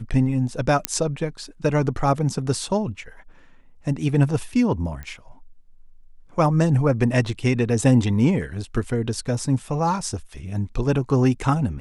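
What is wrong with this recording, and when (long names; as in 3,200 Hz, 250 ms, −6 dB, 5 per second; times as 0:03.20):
0:00.85: click −2 dBFS
0:05.03: click −22 dBFS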